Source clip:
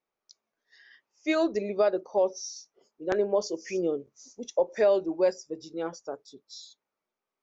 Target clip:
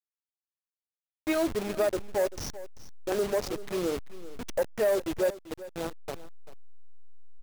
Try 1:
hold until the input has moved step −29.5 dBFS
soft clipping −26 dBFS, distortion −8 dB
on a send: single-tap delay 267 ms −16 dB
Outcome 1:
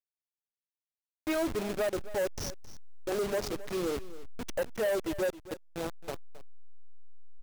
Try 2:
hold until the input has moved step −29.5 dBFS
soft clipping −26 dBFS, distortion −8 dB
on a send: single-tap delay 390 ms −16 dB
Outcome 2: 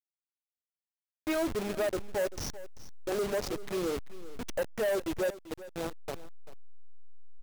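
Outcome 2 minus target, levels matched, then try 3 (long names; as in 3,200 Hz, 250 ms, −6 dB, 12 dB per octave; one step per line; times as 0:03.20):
soft clipping: distortion +8 dB
hold until the input has moved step −29.5 dBFS
soft clipping −19 dBFS, distortion −16 dB
on a send: single-tap delay 390 ms −16 dB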